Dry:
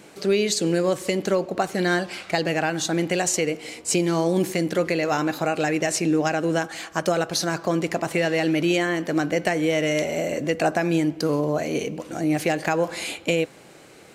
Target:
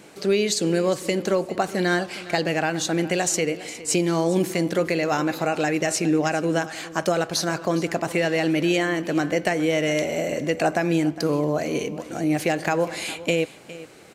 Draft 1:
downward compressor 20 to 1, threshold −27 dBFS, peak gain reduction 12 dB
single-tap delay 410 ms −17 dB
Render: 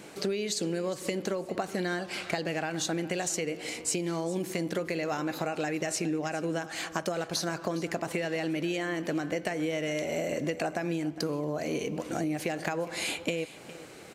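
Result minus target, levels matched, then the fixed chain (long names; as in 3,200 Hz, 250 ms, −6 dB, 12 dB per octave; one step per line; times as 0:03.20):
downward compressor: peak gain reduction +12 dB
single-tap delay 410 ms −17 dB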